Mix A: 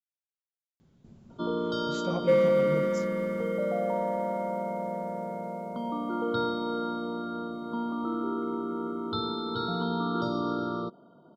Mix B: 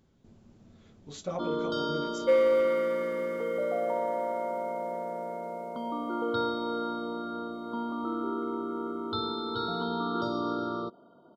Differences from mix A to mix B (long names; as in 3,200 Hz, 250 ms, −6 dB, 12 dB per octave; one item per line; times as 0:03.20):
speech: entry −0.80 s
second sound: add Butterworth high-pass 350 Hz
master: add parametric band 160 Hz −7.5 dB 0.84 octaves